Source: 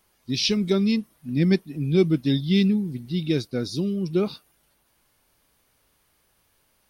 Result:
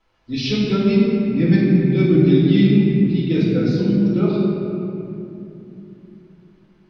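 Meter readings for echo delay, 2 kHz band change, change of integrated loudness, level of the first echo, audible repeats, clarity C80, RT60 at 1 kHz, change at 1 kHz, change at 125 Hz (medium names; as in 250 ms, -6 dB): no echo, +5.0 dB, +6.5 dB, no echo, no echo, 0.0 dB, 2.5 s, +7.0 dB, +8.5 dB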